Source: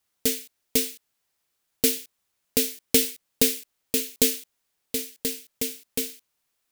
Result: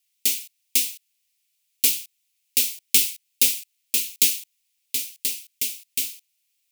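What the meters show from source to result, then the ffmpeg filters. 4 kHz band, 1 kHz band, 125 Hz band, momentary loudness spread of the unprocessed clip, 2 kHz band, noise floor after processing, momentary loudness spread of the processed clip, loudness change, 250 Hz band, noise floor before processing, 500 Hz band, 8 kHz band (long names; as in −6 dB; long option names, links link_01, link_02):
+3.0 dB, below −15 dB, below −10 dB, 11 LU, +3.0 dB, −73 dBFS, 10 LU, +3.5 dB, −14.5 dB, −77 dBFS, −18.0 dB, +4.0 dB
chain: -filter_complex "[0:a]equalizer=frequency=100:width_type=o:width=0.67:gain=9,equalizer=frequency=250:width_type=o:width=0.67:gain=3,equalizer=frequency=630:width_type=o:width=0.67:gain=-3,equalizer=frequency=2500:width_type=o:width=0.67:gain=7,acrossover=split=340|1200[link_01][link_02][link_03];[link_03]aexciter=amount=8.9:drive=3.9:freq=2000[link_04];[link_01][link_02][link_04]amix=inputs=3:normalize=0,volume=-17.5dB"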